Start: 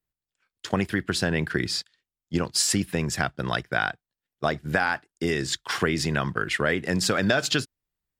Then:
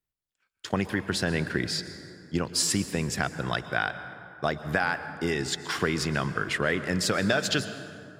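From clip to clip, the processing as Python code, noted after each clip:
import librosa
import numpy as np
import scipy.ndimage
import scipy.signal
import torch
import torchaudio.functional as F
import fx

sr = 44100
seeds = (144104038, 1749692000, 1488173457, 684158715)

y = fx.rev_plate(x, sr, seeds[0], rt60_s=2.7, hf_ratio=0.45, predelay_ms=105, drr_db=11.0)
y = y * librosa.db_to_amplitude(-2.5)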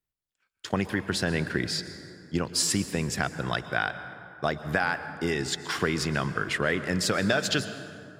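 y = x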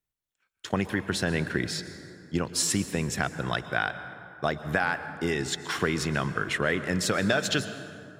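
y = fx.notch(x, sr, hz=4800.0, q=9.7)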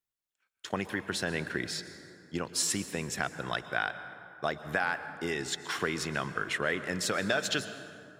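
y = fx.low_shelf(x, sr, hz=220.0, db=-9.0)
y = y * librosa.db_to_amplitude(-3.0)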